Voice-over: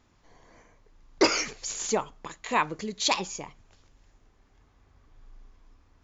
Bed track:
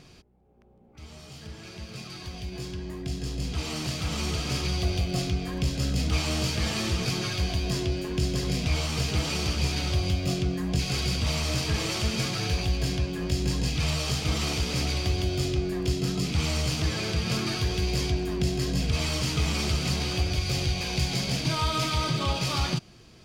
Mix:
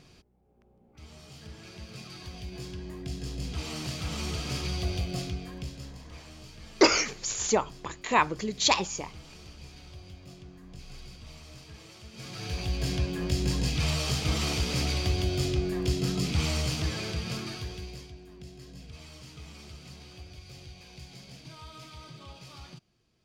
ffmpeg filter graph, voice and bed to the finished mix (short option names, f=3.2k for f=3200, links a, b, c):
-filter_complex "[0:a]adelay=5600,volume=2dB[a];[1:a]volume=16dB,afade=t=out:st=5.01:d=0.98:silence=0.141254,afade=t=in:st=12.12:d=0.89:silence=0.1,afade=t=out:st=16.41:d=1.67:silence=0.112202[b];[a][b]amix=inputs=2:normalize=0"